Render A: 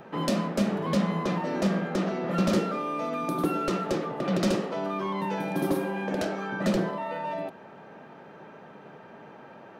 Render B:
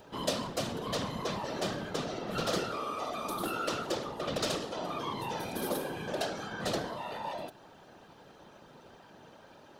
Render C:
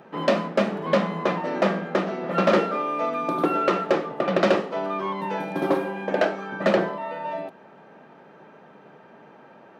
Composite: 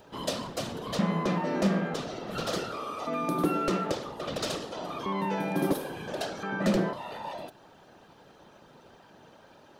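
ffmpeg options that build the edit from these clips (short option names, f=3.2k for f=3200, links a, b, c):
-filter_complex "[0:a]asplit=4[a][b][c][d];[1:a]asplit=5[e][f][g][h][i];[e]atrim=end=0.992[j];[a]atrim=start=0.988:end=1.942[k];[f]atrim=start=1.938:end=3.072[l];[b]atrim=start=3.068:end=3.922[m];[g]atrim=start=3.918:end=5.062[n];[c]atrim=start=5.058:end=5.732[o];[h]atrim=start=5.728:end=6.432[p];[d]atrim=start=6.428:end=6.932[q];[i]atrim=start=6.928[r];[j][k]acrossfade=d=0.004:c1=hsin:c2=hsin[s];[s][l]acrossfade=d=0.004:c1=hsin:c2=hsin[t];[t][m]acrossfade=d=0.004:c1=hsin:c2=hsin[u];[u][n]acrossfade=d=0.004:c1=hsin:c2=hsin[v];[v][o]acrossfade=d=0.004:c1=hsin:c2=hsin[w];[w][p]acrossfade=d=0.004:c1=hsin:c2=hsin[x];[x][q]acrossfade=d=0.004:c1=hsin:c2=hsin[y];[y][r]acrossfade=d=0.004:c1=hsin:c2=hsin"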